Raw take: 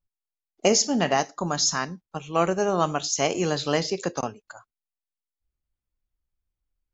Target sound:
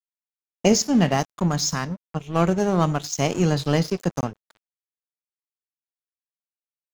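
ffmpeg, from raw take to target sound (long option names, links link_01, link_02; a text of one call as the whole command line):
ffmpeg -i in.wav -af "bass=frequency=250:gain=14,treble=frequency=4000:gain=0,aeval=exprs='sgn(val(0))*max(abs(val(0))-0.0211,0)':channel_layout=same" out.wav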